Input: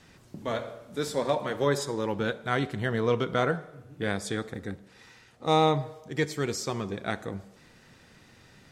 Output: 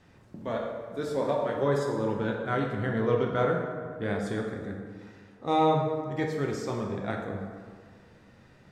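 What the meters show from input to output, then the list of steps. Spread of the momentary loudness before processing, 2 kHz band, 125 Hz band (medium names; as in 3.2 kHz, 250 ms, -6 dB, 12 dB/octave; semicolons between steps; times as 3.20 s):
13 LU, -3.0 dB, 0.0 dB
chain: treble shelf 2.5 kHz -11.5 dB; plate-style reverb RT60 1.8 s, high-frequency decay 0.55×, DRR 0.5 dB; trim -2 dB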